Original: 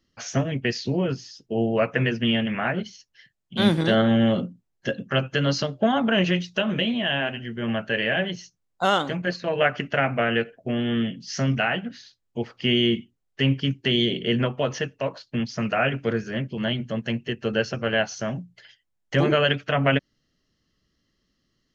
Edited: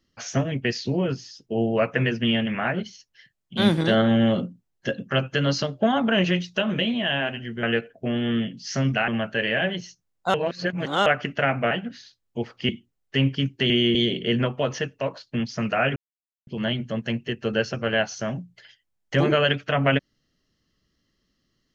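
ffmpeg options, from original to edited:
-filter_complex "[0:a]asplit=11[s0][s1][s2][s3][s4][s5][s6][s7][s8][s9][s10];[s0]atrim=end=7.632[s11];[s1]atrim=start=10.258:end=11.712[s12];[s2]atrim=start=7.628:end=8.892[s13];[s3]atrim=start=8.888:end=9.612,asetpts=PTS-STARTPTS,areverse[s14];[s4]atrim=start=9.608:end=10.262[s15];[s5]atrim=start=11.708:end=12.692[s16];[s6]atrim=start=12.938:end=13.952[s17];[s7]atrim=start=12.688:end=12.942[s18];[s8]atrim=start=13.948:end=15.96,asetpts=PTS-STARTPTS,afade=t=out:st=2.008:d=0.004:c=hsin[s19];[s9]atrim=start=15.96:end=16.47,asetpts=PTS-STARTPTS,volume=0[s20];[s10]atrim=start=16.47,asetpts=PTS-STARTPTS,afade=t=in:d=0.004:c=hsin[s21];[s11][s12]acrossfade=d=0.004:c1=hsin:c2=hsin[s22];[s22][s13]acrossfade=d=0.004:c1=hsin:c2=hsin[s23];[s23][s14]acrossfade=d=0.004:c1=hsin:c2=hsin[s24];[s24][s15]acrossfade=d=0.004:c1=hsin:c2=hsin[s25];[s25][s16]acrossfade=d=0.004:c1=hsin:c2=hsin[s26];[s26][s17]acrossfade=d=0.004:c1=hsin:c2=hsin[s27];[s27][s18]acrossfade=d=0.004:c1=hsin:c2=hsin[s28];[s19][s20][s21]concat=n=3:v=0:a=1[s29];[s28][s29]acrossfade=d=0.004:c1=hsin:c2=hsin"

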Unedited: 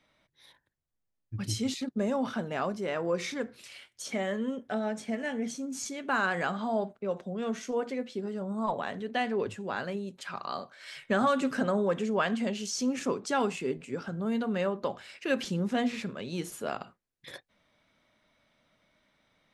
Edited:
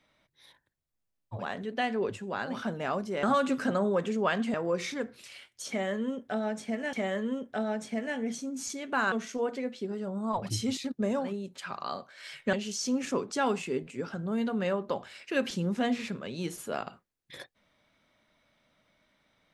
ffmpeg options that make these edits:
-filter_complex "[0:a]asplit=10[s0][s1][s2][s3][s4][s5][s6][s7][s8][s9];[s0]atrim=end=1.47[s10];[s1]atrim=start=8.68:end=9.96[s11];[s2]atrim=start=2.14:end=2.942[s12];[s3]atrim=start=11.158:end=12.472[s13];[s4]atrim=start=2.938:end=5.332[s14];[s5]atrim=start=4.088:end=6.282[s15];[s6]atrim=start=7.458:end=8.84[s16];[s7]atrim=start=1.31:end=2.3[s17];[s8]atrim=start=9.8:end=11.162[s18];[s9]atrim=start=12.468[s19];[s10][s11]acrossfade=d=0.16:c1=tri:c2=tri[s20];[s20][s12]acrossfade=d=0.16:c1=tri:c2=tri[s21];[s21][s13]acrossfade=d=0.004:c1=hsin:c2=hsin[s22];[s22][s14]acrossfade=d=0.004:c1=hsin:c2=hsin[s23];[s23][s15]acrossfade=d=0.004:c1=hsin:c2=hsin[s24];[s24][s16]acrossfade=d=0.004:c1=hsin:c2=hsin[s25];[s25][s17]acrossfade=d=0.16:c1=tri:c2=tri[s26];[s26][s18]acrossfade=d=0.16:c1=tri:c2=tri[s27];[s27][s19]acrossfade=d=0.004:c1=hsin:c2=hsin"

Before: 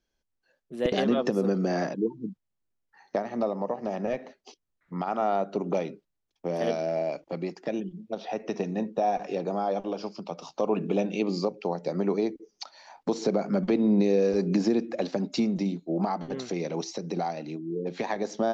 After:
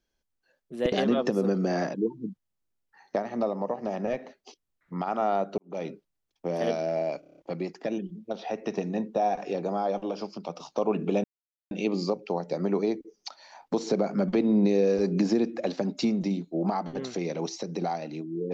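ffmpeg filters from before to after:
-filter_complex "[0:a]asplit=9[s0][s1][s2][s3][s4][s5][s6][s7][s8];[s0]atrim=end=5.58,asetpts=PTS-STARTPTS,afade=t=out:st=5.576:d=0.004:c=hsin[s9];[s1]atrim=start=5.58:end=7.232,asetpts=PTS-STARTPTS,afade=t=in:d=0.28:c=qua[s10];[s2]atrim=start=7.198:end=7.232[s11];[s3]atrim=start=7.198:end=7.232[s12];[s4]atrim=start=7.198:end=7.232[s13];[s5]atrim=start=7.198:end=7.232[s14];[s6]atrim=start=7.198:end=7.232[s15];[s7]atrim=start=7.198:end=11.06,asetpts=PTS-STARTPTS,afade=t=out:st=3.858:d=0.004:c=hsin,apad=pad_dur=0.47[s16];[s8]atrim=start=11.06,asetpts=PTS-STARTPTS,afade=t=in:d=0.004:c=hsin[s17];[s9][s10]concat=n=2:v=0:a=1[s18];[s18][s11]acrossfade=d=0.004:c1=hsin:c2=hsin[s19];[s19][s12]acrossfade=d=0.004:c1=hsin:c2=hsin[s20];[s20][s13]acrossfade=d=0.004:c1=hsin:c2=hsin[s21];[s21][s14]acrossfade=d=0.004:c1=hsin:c2=hsin[s22];[s22][s15]acrossfade=d=0.004:c1=hsin:c2=hsin[s23];[s16][s17]concat=n=2:v=0:a=1[s24];[s23][s24]acrossfade=d=0.004:c1=hsin:c2=hsin"

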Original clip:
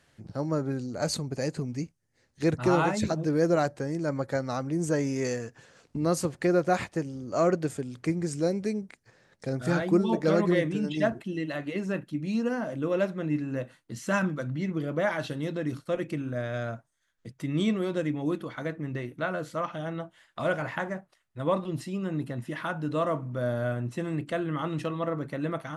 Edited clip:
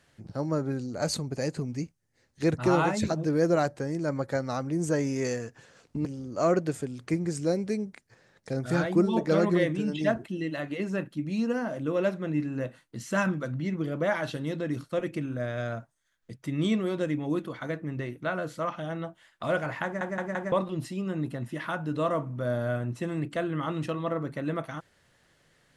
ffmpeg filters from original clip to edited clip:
-filter_complex "[0:a]asplit=6[s0][s1][s2][s3][s4][s5];[s0]atrim=end=6.052[s6];[s1]atrim=start=7.008:end=20.972[s7];[s2]atrim=start=20.798:end=20.972[s8];[s3]atrim=start=20.798:end=20.972[s9];[s4]atrim=start=20.798:end=20.972[s10];[s5]atrim=start=21.478[s11];[s6][s7]acrossfade=d=0.004:c1=hsin:c2=hsin[s12];[s12][s8]acrossfade=d=0.004:c1=hsin:c2=hsin[s13];[s13][s9]acrossfade=d=0.004:c1=hsin:c2=hsin[s14];[s14][s10]acrossfade=d=0.004:c1=hsin:c2=hsin[s15];[s15][s11]acrossfade=d=0.004:c1=hsin:c2=hsin"

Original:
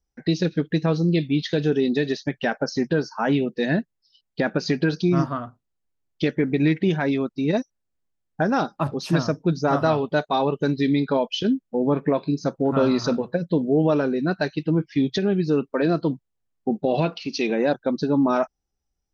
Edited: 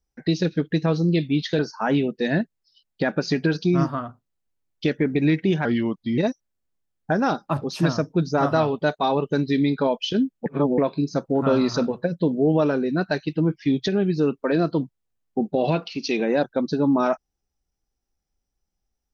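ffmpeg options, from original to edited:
-filter_complex "[0:a]asplit=6[s0][s1][s2][s3][s4][s5];[s0]atrim=end=1.592[s6];[s1]atrim=start=2.968:end=7.034[s7];[s2]atrim=start=7.03:end=7.48,asetpts=PTS-STARTPTS,asetrate=37485,aresample=44100,atrim=end_sample=23347,asetpts=PTS-STARTPTS[s8];[s3]atrim=start=7.476:end=11.762[s9];[s4]atrim=start=11.758:end=12.082,asetpts=PTS-STARTPTS,areverse[s10];[s5]atrim=start=12.078[s11];[s6][s7]acrossfade=d=0.004:c1=hsin:c2=hsin[s12];[s12][s8]acrossfade=d=0.004:c1=hsin:c2=hsin[s13];[s13][s9]acrossfade=d=0.004:c1=hsin:c2=hsin[s14];[s14][s10]acrossfade=d=0.004:c1=hsin:c2=hsin[s15];[s15][s11]acrossfade=d=0.004:c1=hsin:c2=hsin"

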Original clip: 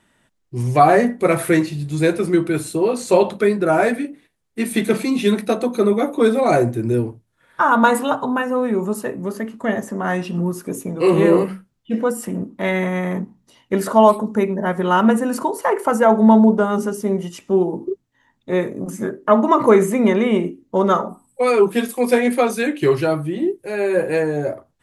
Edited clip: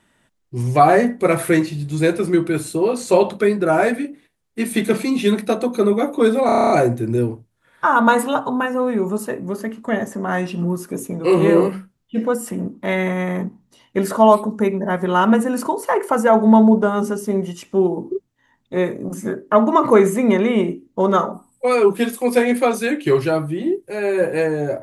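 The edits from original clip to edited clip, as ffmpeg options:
-filter_complex "[0:a]asplit=9[s0][s1][s2][s3][s4][s5][s6][s7][s8];[s0]atrim=end=6.492[s9];[s1]atrim=start=6.458:end=6.492[s10];[s2]atrim=start=6.458:end=6.492[s11];[s3]atrim=start=6.458:end=6.492[s12];[s4]atrim=start=6.458:end=6.492[s13];[s5]atrim=start=6.458:end=6.492[s14];[s6]atrim=start=6.458:end=6.492[s15];[s7]atrim=start=6.458:end=6.492[s16];[s8]atrim=start=6.458[s17];[s9][s10]acrossfade=d=0.004:c1=hsin:c2=hsin[s18];[s18][s11]acrossfade=d=0.004:c1=hsin:c2=hsin[s19];[s19][s12]acrossfade=d=0.004:c1=hsin:c2=hsin[s20];[s20][s13]acrossfade=d=0.004:c1=hsin:c2=hsin[s21];[s21][s14]acrossfade=d=0.004:c1=hsin:c2=hsin[s22];[s22][s15]acrossfade=d=0.004:c1=hsin:c2=hsin[s23];[s23][s16]acrossfade=d=0.004:c1=hsin:c2=hsin[s24];[s24][s17]acrossfade=d=0.004:c1=hsin:c2=hsin"

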